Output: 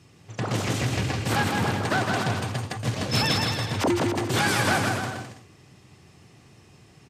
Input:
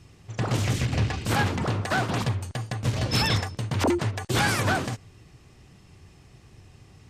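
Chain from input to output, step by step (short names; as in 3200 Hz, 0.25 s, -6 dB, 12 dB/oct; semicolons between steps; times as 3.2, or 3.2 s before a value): HPF 120 Hz 12 dB/oct; on a send: bouncing-ball echo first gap 0.16 s, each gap 0.75×, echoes 5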